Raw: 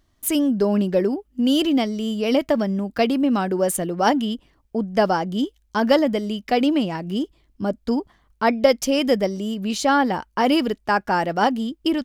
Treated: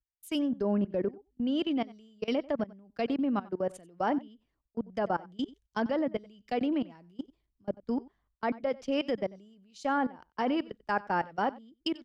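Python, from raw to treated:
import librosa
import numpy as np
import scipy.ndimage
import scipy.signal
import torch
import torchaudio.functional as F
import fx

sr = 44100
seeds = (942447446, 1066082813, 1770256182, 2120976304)

y = fx.env_lowpass_down(x, sr, base_hz=2200.0, full_db=-14.5)
y = fx.level_steps(y, sr, step_db=21)
y = y + 10.0 ** (-19.5 / 20.0) * np.pad(y, (int(93 * sr / 1000.0), 0))[:len(y)]
y = fx.band_widen(y, sr, depth_pct=70)
y = y * 10.0 ** (-7.0 / 20.0)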